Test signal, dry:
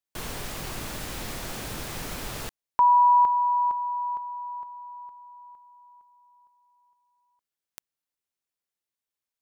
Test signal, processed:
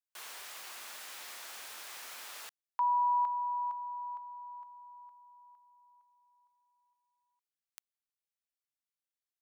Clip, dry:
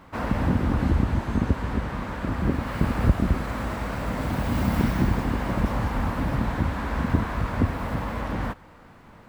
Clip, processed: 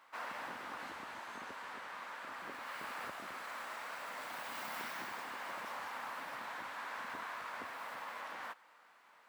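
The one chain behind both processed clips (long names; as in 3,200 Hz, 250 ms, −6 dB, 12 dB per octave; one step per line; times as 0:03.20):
high-pass filter 970 Hz 12 dB per octave
level −8 dB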